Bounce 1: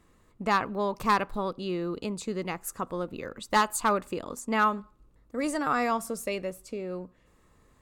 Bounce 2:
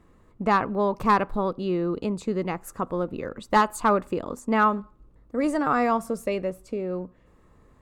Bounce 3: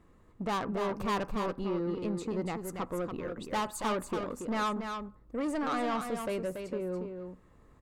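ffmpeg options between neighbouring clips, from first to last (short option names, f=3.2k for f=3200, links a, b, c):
-af "highshelf=f=2.2k:g=-12,volume=6dB"
-af "asoftclip=type=tanh:threshold=-24dB,aecho=1:1:283:0.473,volume=-4dB"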